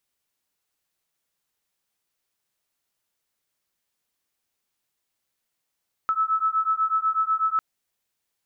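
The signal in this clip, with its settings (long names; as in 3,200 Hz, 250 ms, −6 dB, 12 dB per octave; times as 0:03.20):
two tones that beat 1,300 Hz, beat 8.1 Hz, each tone −23.5 dBFS 1.50 s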